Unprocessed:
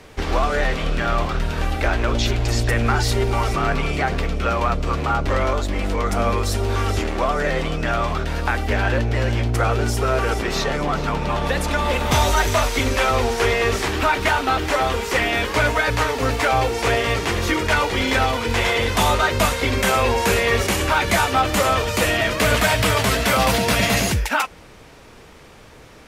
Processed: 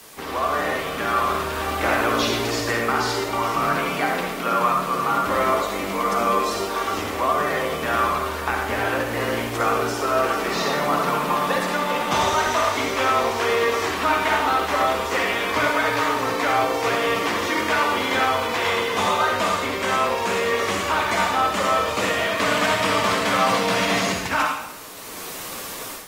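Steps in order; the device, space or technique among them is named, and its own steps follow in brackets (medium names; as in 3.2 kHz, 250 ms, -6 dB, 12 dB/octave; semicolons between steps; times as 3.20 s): filmed off a television (band-pass 210–7700 Hz; peaking EQ 1.1 kHz +7.5 dB 0.42 oct; reverberation RT60 0.80 s, pre-delay 47 ms, DRR 1 dB; white noise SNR 20 dB; level rider; trim -8.5 dB; AAC 48 kbps 48 kHz)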